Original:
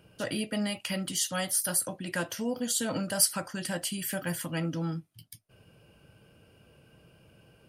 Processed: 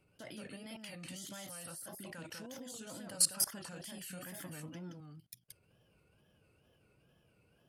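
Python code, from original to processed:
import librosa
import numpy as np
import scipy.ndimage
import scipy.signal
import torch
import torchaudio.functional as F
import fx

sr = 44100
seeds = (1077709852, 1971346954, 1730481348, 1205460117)

y = fx.level_steps(x, sr, step_db=23)
y = y + 10.0 ** (-3.5 / 20.0) * np.pad(y, (int(185 * sr / 1000.0), 0))[:len(y)]
y = fx.wow_flutter(y, sr, seeds[0], rate_hz=2.1, depth_cents=140.0)
y = y * librosa.db_to_amplitude(-2.5)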